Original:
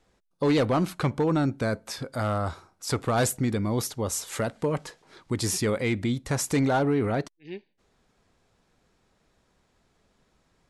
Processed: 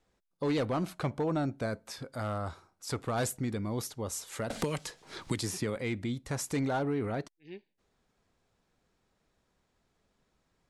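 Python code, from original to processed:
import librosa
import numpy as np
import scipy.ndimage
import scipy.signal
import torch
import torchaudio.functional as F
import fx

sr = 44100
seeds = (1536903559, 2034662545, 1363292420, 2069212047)

y = fx.peak_eq(x, sr, hz=660.0, db=8.0, octaves=0.36, at=(0.83, 1.66))
y = fx.band_squash(y, sr, depth_pct=100, at=(4.5, 5.76))
y = F.gain(torch.from_numpy(y), -7.5).numpy()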